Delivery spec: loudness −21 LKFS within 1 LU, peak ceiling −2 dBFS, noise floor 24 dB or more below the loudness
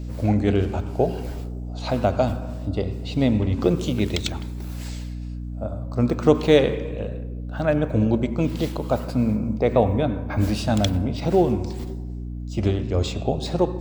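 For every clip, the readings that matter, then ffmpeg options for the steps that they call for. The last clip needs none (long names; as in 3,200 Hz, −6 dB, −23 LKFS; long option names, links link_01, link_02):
mains hum 60 Hz; hum harmonics up to 300 Hz; level of the hum −29 dBFS; integrated loudness −23.5 LKFS; sample peak −2.0 dBFS; target loudness −21.0 LKFS
→ -af "bandreject=frequency=60:width_type=h:width=6,bandreject=frequency=120:width_type=h:width=6,bandreject=frequency=180:width_type=h:width=6,bandreject=frequency=240:width_type=h:width=6,bandreject=frequency=300:width_type=h:width=6"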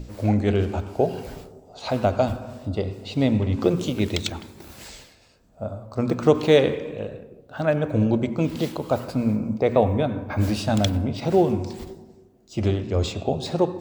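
mains hum none found; integrated loudness −23.5 LKFS; sample peak −3.0 dBFS; target loudness −21.0 LKFS
→ -af "volume=2.5dB,alimiter=limit=-2dB:level=0:latency=1"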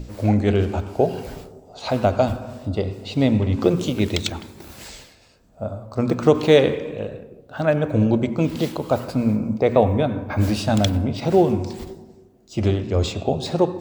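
integrated loudness −21.0 LKFS; sample peak −2.0 dBFS; background noise floor −51 dBFS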